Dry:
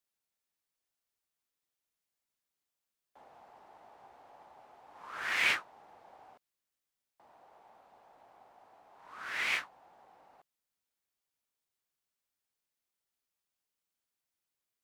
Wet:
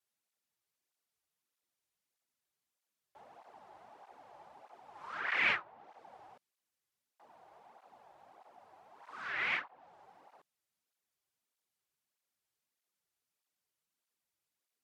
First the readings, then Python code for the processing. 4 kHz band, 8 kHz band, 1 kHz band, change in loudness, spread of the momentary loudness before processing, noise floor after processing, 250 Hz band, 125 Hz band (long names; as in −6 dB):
−5.0 dB, below −15 dB, +0.5 dB, −1.5 dB, 18 LU, below −85 dBFS, +1.0 dB, can't be measured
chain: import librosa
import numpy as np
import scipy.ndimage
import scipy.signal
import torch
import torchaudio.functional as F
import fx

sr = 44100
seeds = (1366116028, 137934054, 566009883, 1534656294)

y = fx.env_lowpass_down(x, sr, base_hz=2500.0, full_db=-36.5)
y = fx.flanger_cancel(y, sr, hz=1.6, depth_ms=4.6)
y = y * 10.0 ** (3.5 / 20.0)